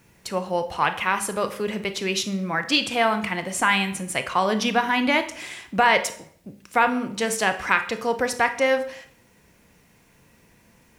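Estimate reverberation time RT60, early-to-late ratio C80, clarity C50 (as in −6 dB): 0.60 s, 15.5 dB, 12.0 dB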